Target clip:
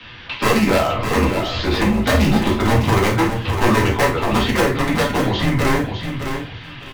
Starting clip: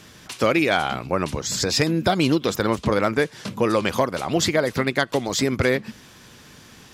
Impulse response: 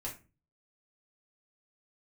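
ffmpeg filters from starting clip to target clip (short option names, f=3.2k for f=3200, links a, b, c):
-filter_complex "[0:a]highpass=f=160:t=q:w=0.5412,highpass=f=160:t=q:w=1.307,lowpass=f=3.5k:t=q:w=0.5176,lowpass=f=3.5k:t=q:w=0.7071,lowpass=f=3.5k:t=q:w=1.932,afreqshift=-110,acrossover=split=160|1100[a][b][c];[c]acompressor=threshold=-40dB:ratio=6[d];[a][b][d]amix=inputs=3:normalize=0,aeval=exprs='0.141*(abs(mod(val(0)/0.141+3,4)-2)-1)':c=same,asplit=2[e][f];[f]adelay=50,volume=-11.5dB[g];[e][g]amix=inputs=2:normalize=0,aecho=1:1:606|1212|1818:0.422|0.0843|0.0169[h];[1:a]atrim=start_sample=2205[i];[h][i]afir=irnorm=-1:irlink=0,crystalizer=i=9:c=0,volume=4dB"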